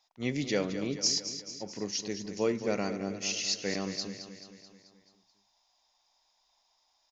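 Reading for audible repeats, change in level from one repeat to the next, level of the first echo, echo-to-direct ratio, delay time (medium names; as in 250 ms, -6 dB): 5, -5.0 dB, -10.5 dB, -9.0 dB, 217 ms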